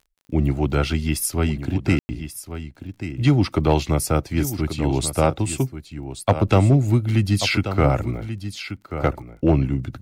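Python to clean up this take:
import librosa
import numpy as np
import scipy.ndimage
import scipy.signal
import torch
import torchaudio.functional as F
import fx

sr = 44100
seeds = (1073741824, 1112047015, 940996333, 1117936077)

y = fx.fix_declip(x, sr, threshold_db=-7.5)
y = fx.fix_declick_ar(y, sr, threshold=6.5)
y = fx.fix_ambience(y, sr, seeds[0], print_start_s=2.68, print_end_s=3.18, start_s=1.99, end_s=2.09)
y = fx.fix_echo_inverse(y, sr, delay_ms=1135, level_db=-11.0)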